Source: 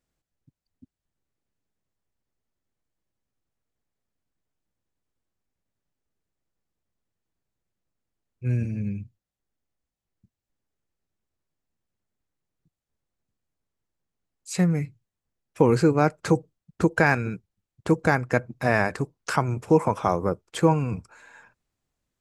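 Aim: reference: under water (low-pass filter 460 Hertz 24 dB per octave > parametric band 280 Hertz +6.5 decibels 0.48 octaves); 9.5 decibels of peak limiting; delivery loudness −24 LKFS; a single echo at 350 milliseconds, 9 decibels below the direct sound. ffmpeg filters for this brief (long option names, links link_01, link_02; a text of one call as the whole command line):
ffmpeg -i in.wav -af "alimiter=limit=-14dB:level=0:latency=1,lowpass=frequency=460:width=0.5412,lowpass=frequency=460:width=1.3066,equalizer=frequency=280:width_type=o:width=0.48:gain=6.5,aecho=1:1:350:0.355,volume=4dB" out.wav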